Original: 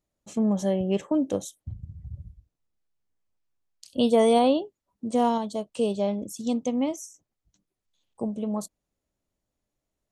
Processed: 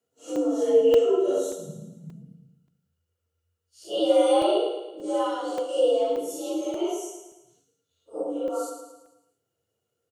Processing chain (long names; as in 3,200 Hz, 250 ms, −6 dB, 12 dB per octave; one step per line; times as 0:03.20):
random phases in long frames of 200 ms
high-shelf EQ 4,800 Hz +7.5 dB
mains-hum notches 50/100/150/200/250 Hz
in parallel at −1 dB: downward compressor, threshold −33 dBFS, peak gain reduction 17 dB
on the sum: hollow resonant body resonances 390/1,300/2,800 Hz, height 18 dB, ringing for 45 ms
frequency shifter +81 Hz
on a send: repeating echo 110 ms, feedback 48%, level −8 dB
on the sum: regular buffer underruns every 0.58 s, samples 128, zero, from 0:00.36
level −8.5 dB